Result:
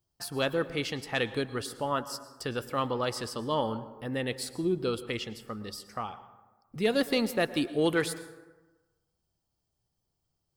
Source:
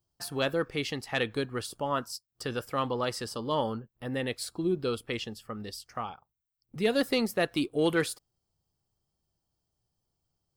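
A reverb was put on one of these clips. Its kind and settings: plate-style reverb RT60 1.2 s, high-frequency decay 0.45×, pre-delay 95 ms, DRR 14 dB

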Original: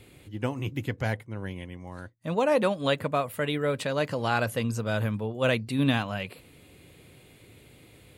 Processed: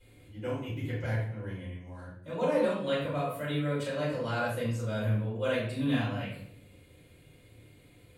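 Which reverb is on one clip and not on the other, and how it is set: shoebox room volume 110 m³, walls mixed, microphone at 4.7 m; gain -20.5 dB

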